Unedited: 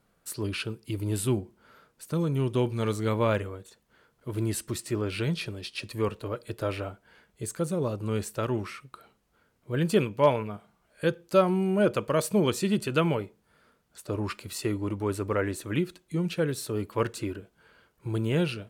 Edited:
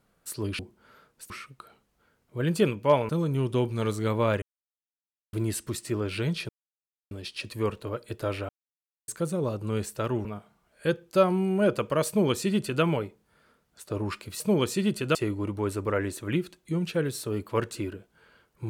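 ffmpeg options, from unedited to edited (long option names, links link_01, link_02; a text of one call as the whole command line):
ffmpeg -i in.wav -filter_complex "[0:a]asplit=12[link_01][link_02][link_03][link_04][link_05][link_06][link_07][link_08][link_09][link_10][link_11][link_12];[link_01]atrim=end=0.592[link_13];[link_02]atrim=start=1.388:end=2.102[link_14];[link_03]atrim=start=8.638:end=10.432[link_15];[link_04]atrim=start=2.098:end=3.43,asetpts=PTS-STARTPTS,afade=type=out:start_time=1.328:duration=0.004:curve=hsin[link_16];[link_05]atrim=start=3.43:end=4.34,asetpts=PTS-STARTPTS,volume=0[link_17];[link_06]atrim=start=4.34:end=5.5,asetpts=PTS-STARTPTS,afade=type=in:duration=0.004:curve=hsin,afade=type=out:start_time=1.156:duration=0.004:curve=hsin,apad=pad_dur=0.62[link_18];[link_07]atrim=start=5.5:end=6.88,asetpts=PTS-STARTPTS,afade=type=in:duration=0.004:curve=hsin,afade=type=out:start_time=1.376:duration=0.004:curve=hsin[link_19];[link_08]atrim=start=6.88:end=7.47,asetpts=PTS-STARTPTS,volume=0[link_20];[link_09]atrim=start=7.47:end=8.642,asetpts=PTS-STARTPTS,afade=type=in:duration=0.004:curve=hsin[link_21];[link_10]atrim=start=10.428:end=14.582[link_22];[link_11]atrim=start=12.258:end=13.012[link_23];[link_12]atrim=start=14.578[link_24];[link_13][link_14]acrossfade=duration=0.004:curve1=hsin:curve2=hsin[link_25];[link_25][link_15]acrossfade=duration=0.004:curve1=hsin:curve2=hsin[link_26];[link_16][link_17][link_18][link_19][link_20][link_21]concat=n=6:v=0:a=1[link_27];[link_26][link_27]acrossfade=duration=0.004:curve1=hsin:curve2=hsin[link_28];[link_28][link_22]acrossfade=duration=0.004:curve1=hsin:curve2=hsin[link_29];[link_29][link_23]acrossfade=duration=0.004:curve1=hsin:curve2=hsin[link_30];[link_30][link_24]acrossfade=duration=0.004:curve1=hsin:curve2=hsin" out.wav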